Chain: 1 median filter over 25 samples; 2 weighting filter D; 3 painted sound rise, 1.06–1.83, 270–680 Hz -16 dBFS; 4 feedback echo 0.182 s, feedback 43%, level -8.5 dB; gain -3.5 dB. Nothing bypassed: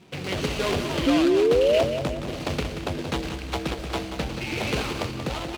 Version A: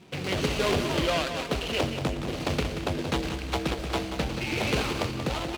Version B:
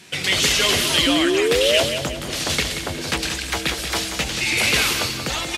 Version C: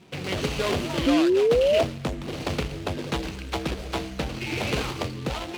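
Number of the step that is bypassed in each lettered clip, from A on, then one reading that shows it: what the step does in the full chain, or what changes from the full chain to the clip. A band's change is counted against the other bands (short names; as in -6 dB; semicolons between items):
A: 3, 500 Hz band -6.5 dB; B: 1, 8 kHz band +15.0 dB; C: 4, echo-to-direct -7.5 dB to none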